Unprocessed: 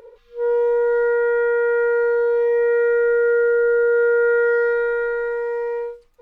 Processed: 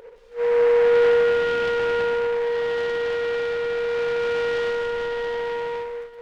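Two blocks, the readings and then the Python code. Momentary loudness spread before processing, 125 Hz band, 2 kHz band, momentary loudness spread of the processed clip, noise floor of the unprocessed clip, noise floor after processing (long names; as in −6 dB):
7 LU, can't be measured, −3.0 dB, 10 LU, −50 dBFS, −42 dBFS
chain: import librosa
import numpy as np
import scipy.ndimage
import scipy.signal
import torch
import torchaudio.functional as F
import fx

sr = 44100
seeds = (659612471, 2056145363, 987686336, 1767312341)

y = 10.0 ** (-13.5 / 20.0) * np.tanh(x / 10.0 ** (-13.5 / 20.0))
y = fx.echo_multitap(y, sr, ms=(130, 166, 181, 465), db=(-18.0, -16.5, -11.5, -15.5))
y = fx.noise_mod_delay(y, sr, seeds[0], noise_hz=1200.0, depth_ms=0.049)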